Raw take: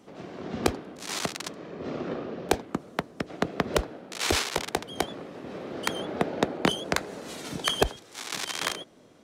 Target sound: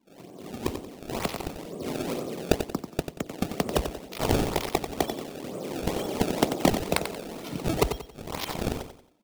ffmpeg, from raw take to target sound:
-af "afftdn=nr=16:nf=-44,acrusher=samples=25:mix=1:aa=0.000001:lfo=1:lforange=40:lforate=2.1,equalizer=f=1.6k:w=2.4:g=-7,dynaudnorm=f=630:g=3:m=11dB,aecho=1:1:91|182|273|364:0.376|0.124|0.0409|0.0135,volume=-5.5dB"

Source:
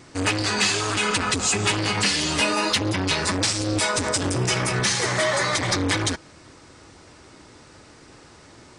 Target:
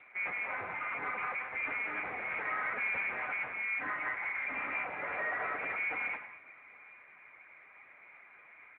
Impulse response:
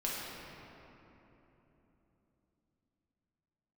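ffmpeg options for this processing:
-filter_complex "[0:a]asplit=3[a][b][c];[a]afade=t=out:st=2.04:d=0.02[d];[b]acontrast=66,afade=t=in:st=2.04:d=0.02,afade=t=out:st=3.1:d=0.02[e];[c]afade=t=in:st=3.1:d=0.02[f];[d][e][f]amix=inputs=3:normalize=0,asettb=1/sr,asplit=3[g][h][i];[g]atrim=end=3.814[j];[h]atrim=start=3.81:end=4.46,asetpts=PTS-STARTPTS,afade=t=in:d=0.004:c=qsin,afade=t=out:st=0.646:d=0.004:c=qsin,highpass=220[k];[i]atrim=start=4.456[l];[j][k]acrossfade=d=0.004:c1=hsin:c2=qsin[m];[m][l]acrossfade=d=0.004:c1=qsin:c2=hsin,asoftclip=type=hard:threshold=-24.5dB,asplit=2[n][o];[o]adelay=816.3,volume=-23dB,highshelf=f=4k:g=-18.4[p];[n][p]amix=inputs=2:normalize=0,asplit=2[q][r];[1:a]atrim=start_sample=2205,afade=t=out:st=0.19:d=0.01,atrim=end_sample=8820,adelay=85[s];[r][s]afir=irnorm=-1:irlink=0,volume=-11dB[t];[q][t]amix=inputs=2:normalize=0,lowpass=f=2.1k:t=q:w=0.5098,lowpass=f=2.1k:t=q:w=0.6013,lowpass=f=2.1k:t=q:w=0.9,lowpass=f=2.1k:t=q:w=2.563,afreqshift=-2500,volume=-6.5dB" -ar 8000 -c:a libopencore_amrnb -b:a 10200

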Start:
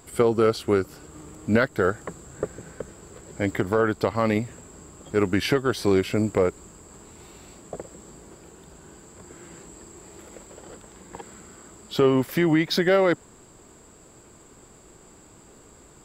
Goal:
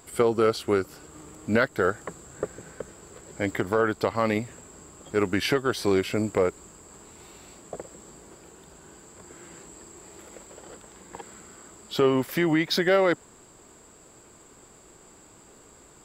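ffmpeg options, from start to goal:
-af "lowshelf=f=310:g=-5.5"

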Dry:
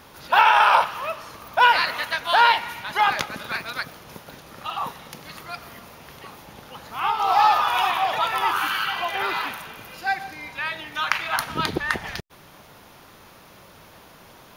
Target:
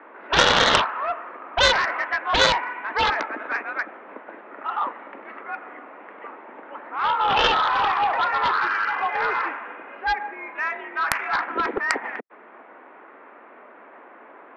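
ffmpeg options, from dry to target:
-af "highpass=f=230:t=q:w=0.5412,highpass=f=230:t=q:w=1.307,lowpass=f=2.1k:t=q:w=0.5176,lowpass=f=2.1k:t=q:w=0.7071,lowpass=f=2.1k:t=q:w=1.932,afreqshift=54,aeval=exprs='0.794*(cos(1*acos(clip(val(0)/0.794,-1,1)))-cos(1*PI/2))+0.355*(cos(7*acos(clip(val(0)/0.794,-1,1)))-cos(7*PI/2))':c=same,volume=-2.5dB"

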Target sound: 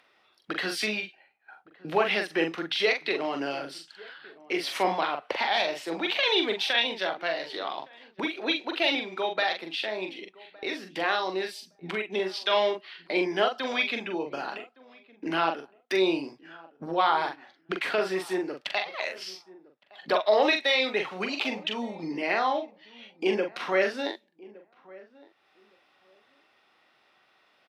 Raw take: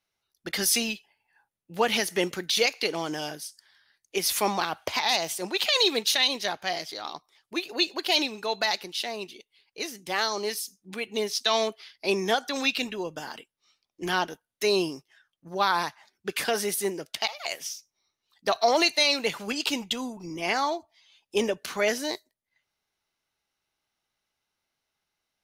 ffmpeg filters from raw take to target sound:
-filter_complex "[0:a]highpass=120,acrossover=split=270 4100:gain=0.224 1 0.0794[a][b][c];[a][b][c]amix=inputs=3:normalize=0,agate=range=-33dB:threshold=-59dB:ratio=3:detection=peak,acompressor=mode=upward:threshold=-27dB:ratio=2.5,asplit=2[d][e];[e]adelay=39,volume=-5.5dB[f];[d][f]amix=inputs=2:normalize=0,asplit=2[g][h];[h]adelay=1069,lowpass=f=1.1k:p=1,volume=-21dB,asplit=2[i][j];[j]adelay=1069,lowpass=f=1.1k:p=1,volume=0.18[k];[g][i][k]amix=inputs=3:normalize=0,asetrate=40517,aresample=44100"

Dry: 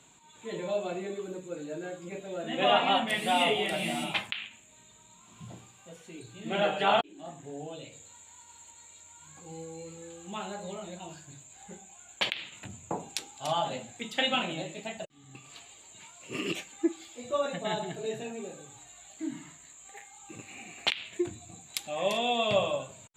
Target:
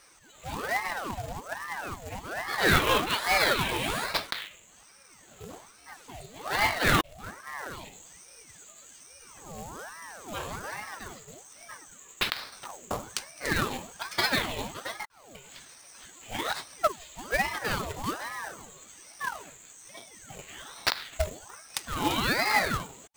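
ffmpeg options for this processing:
-af "acrusher=bits=2:mode=log:mix=0:aa=0.000001,aeval=exprs='val(0)*sin(2*PI*880*n/s+880*0.7/1.2*sin(2*PI*1.2*n/s))':c=same,volume=4dB"

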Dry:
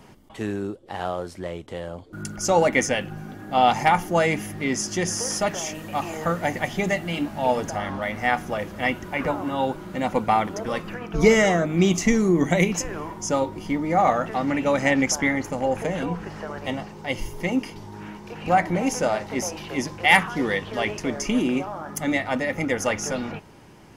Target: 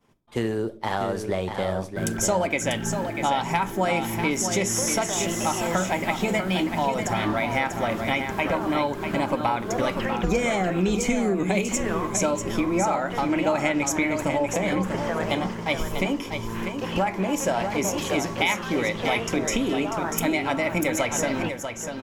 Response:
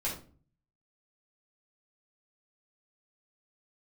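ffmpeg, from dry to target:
-filter_complex "[0:a]agate=range=-33dB:threshold=-35dB:ratio=3:detection=peak,acompressor=threshold=-29dB:ratio=6,aecho=1:1:700:0.447,asplit=2[a][b];[1:a]atrim=start_sample=2205[c];[b][c]afir=irnorm=-1:irlink=0,volume=-17dB[d];[a][d]amix=inputs=2:normalize=0,asetrate=48000,aresample=44100,volume=6.5dB"

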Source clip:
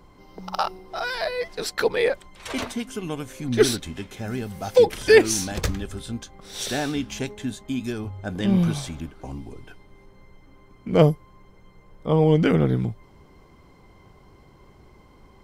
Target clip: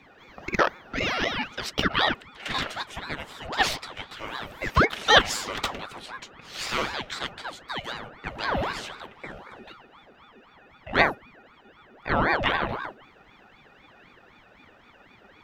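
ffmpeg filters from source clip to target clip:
-af "afreqshift=64,equalizer=f=160:t=o:w=0.67:g=-12,equalizer=f=400:t=o:w=0.67:g=-6,equalizer=f=1k:t=o:w=0.67:g=11,equalizer=f=2.5k:t=o:w=0.67:g=12,equalizer=f=10k:t=o:w=0.67:g=-9,aeval=exprs='val(0)*sin(2*PI*830*n/s+830*0.65/3.9*sin(2*PI*3.9*n/s))':c=same,volume=-1.5dB"

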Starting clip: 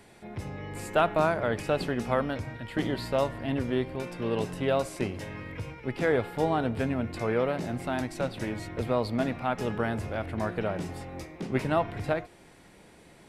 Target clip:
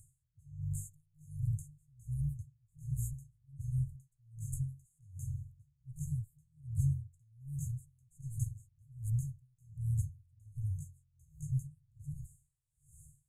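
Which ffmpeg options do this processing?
-af "afftfilt=real='re*(1-between(b*sr/4096,160,6300))':imag='im*(1-between(b*sr/4096,160,6300))':win_size=4096:overlap=0.75,acontrast=34,aeval=exprs='val(0)*pow(10,-35*(0.5-0.5*cos(2*PI*1.3*n/s))/20)':c=same,volume=1dB"

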